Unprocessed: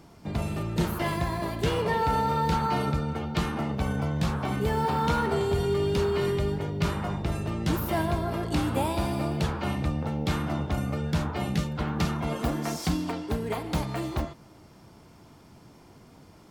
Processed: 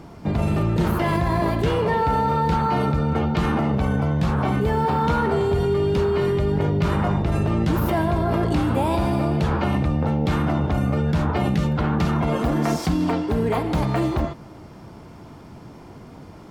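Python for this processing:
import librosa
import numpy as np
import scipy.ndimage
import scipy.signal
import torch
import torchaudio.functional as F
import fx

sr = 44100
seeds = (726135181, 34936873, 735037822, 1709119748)

p1 = fx.high_shelf(x, sr, hz=3100.0, db=-10.0)
p2 = fx.over_compress(p1, sr, threshold_db=-31.0, ratio=-0.5)
p3 = p1 + (p2 * 10.0 ** (-2.0 / 20.0))
y = p3 * 10.0 ** (4.0 / 20.0)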